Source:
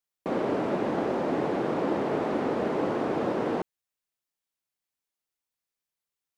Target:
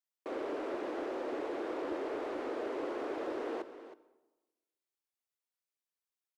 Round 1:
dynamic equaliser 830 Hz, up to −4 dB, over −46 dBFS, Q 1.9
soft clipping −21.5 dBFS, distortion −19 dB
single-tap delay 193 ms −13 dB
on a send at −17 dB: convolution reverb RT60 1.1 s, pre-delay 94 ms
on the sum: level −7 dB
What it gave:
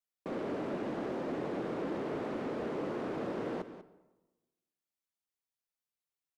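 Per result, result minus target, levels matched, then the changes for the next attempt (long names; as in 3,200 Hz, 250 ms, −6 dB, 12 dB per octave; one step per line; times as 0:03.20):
echo 126 ms early; 250 Hz band +2.5 dB
change: single-tap delay 319 ms −13 dB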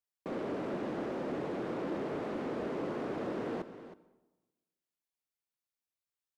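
250 Hz band +2.5 dB
add after dynamic equaliser: Butterworth high-pass 300 Hz 36 dB per octave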